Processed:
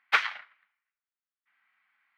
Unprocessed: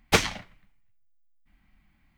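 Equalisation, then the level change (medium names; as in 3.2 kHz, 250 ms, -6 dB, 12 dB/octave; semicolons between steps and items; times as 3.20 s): resonant high-pass 1.4 kHz, resonance Q 2.1; distance through air 370 m; treble shelf 7 kHz +10 dB; 0.0 dB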